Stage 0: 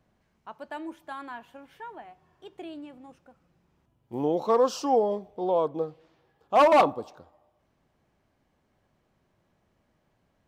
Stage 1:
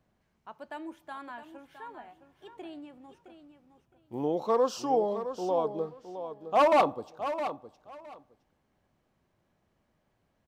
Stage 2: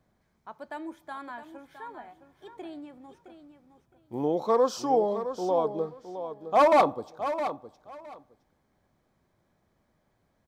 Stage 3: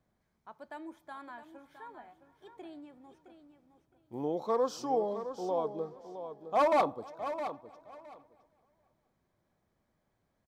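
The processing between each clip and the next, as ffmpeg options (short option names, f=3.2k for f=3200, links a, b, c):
-af "aecho=1:1:664|1328:0.299|0.0537,volume=-3.5dB"
-af "bandreject=f=2.8k:w=5.7,volume=2.5dB"
-filter_complex "[0:a]asplit=2[a][b];[b]adelay=468,lowpass=f=4.4k:p=1,volume=-23.5dB,asplit=2[c][d];[d]adelay=468,lowpass=f=4.4k:p=1,volume=0.41,asplit=2[e][f];[f]adelay=468,lowpass=f=4.4k:p=1,volume=0.41[g];[a][c][e][g]amix=inputs=4:normalize=0,volume=-6.5dB"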